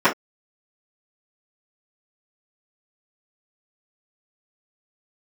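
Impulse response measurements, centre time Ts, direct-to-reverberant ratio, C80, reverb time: 16 ms, -13.5 dB, 37.0 dB, not exponential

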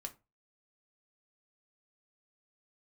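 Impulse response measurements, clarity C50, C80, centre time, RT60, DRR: 17.5 dB, 25.0 dB, 6 ms, 0.25 s, 4.0 dB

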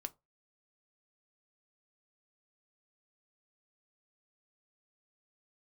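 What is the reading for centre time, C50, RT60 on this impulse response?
3 ms, 25.0 dB, 0.25 s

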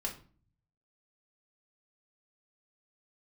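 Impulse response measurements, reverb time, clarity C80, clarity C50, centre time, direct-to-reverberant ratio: 0.40 s, 16.0 dB, 10.5 dB, 16 ms, -2.5 dB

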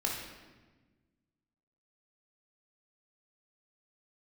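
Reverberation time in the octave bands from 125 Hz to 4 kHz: 2.0, 1.9, 1.4, 1.2, 1.2, 0.95 s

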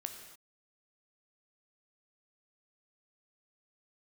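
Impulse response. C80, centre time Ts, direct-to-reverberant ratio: 8.0 dB, 28 ms, 5.0 dB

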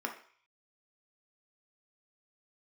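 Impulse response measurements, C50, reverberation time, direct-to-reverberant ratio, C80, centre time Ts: 8.5 dB, 0.50 s, 2.0 dB, 14.0 dB, 17 ms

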